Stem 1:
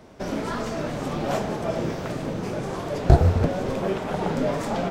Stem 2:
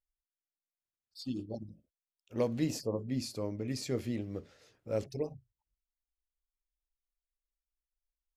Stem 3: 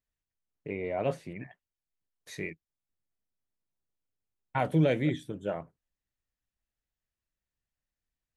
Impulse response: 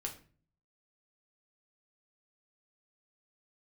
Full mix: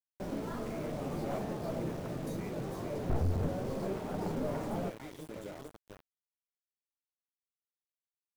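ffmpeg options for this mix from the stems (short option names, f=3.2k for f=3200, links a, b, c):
-filter_complex "[0:a]aeval=exprs='clip(val(0),-1,0.0668)':c=same,volume=-15.5dB,asplit=2[a][b];[b]volume=-11.5dB[c];[1:a]aeval=exprs='val(0)+0.001*(sin(2*PI*50*n/s)+sin(2*PI*2*50*n/s)/2+sin(2*PI*3*50*n/s)/3+sin(2*PI*4*50*n/s)/4+sin(2*PI*5*50*n/s)/5)':c=same,aecho=1:1:3.1:0.48,acompressor=threshold=-38dB:ratio=8,volume=-7.5dB,asplit=2[d][e];[e]volume=-4.5dB[f];[2:a]aemphasis=mode=production:type=riaa,alimiter=level_in=3.5dB:limit=-24dB:level=0:latency=1:release=340,volume=-3.5dB,acompressor=threshold=-47dB:ratio=2.5,volume=-3.5dB,asplit=3[g][h][i];[h]volume=-3.5dB[j];[i]volume=-6dB[k];[d][g]amix=inputs=2:normalize=0,acompressor=threshold=-53dB:ratio=6,volume=0dB[l];[3:a]atrim=start_sample=2205[m];[c][j]amix=inputs=2:normalize=0[n];[n][m]afir=irnorm=-1:irlink=0[o];[f][k]amix=inputs=2:normalize=0,aecho=0:1:449:1[p];[a][l][o][p]amix=inputs=4:normalize=0,acrusher=bits=7:mix=0:aa=0.000001,asoftclip=type=hard:threshold=-29.5dB,tiltshelf=f=1.3k:g=6"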